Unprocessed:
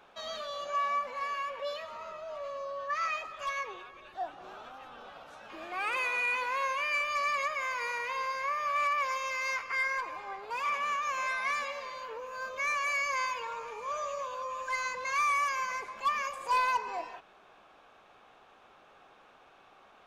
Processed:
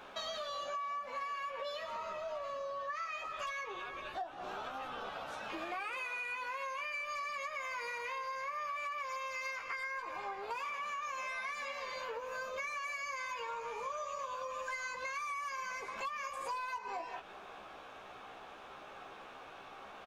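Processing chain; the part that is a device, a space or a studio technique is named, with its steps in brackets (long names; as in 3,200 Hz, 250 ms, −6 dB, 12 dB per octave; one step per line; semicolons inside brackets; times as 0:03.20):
double-tracking delay 15 ms −5.5 dB
serial compression, leveller first (downward compressor 2.5 to 1, threshold −32 dBFS, peak gain reduction 7 dB; downward compressor 6 to 1, threshold −45 dBFS, peak gain reduction 15.5 dB)
level +6.5 dB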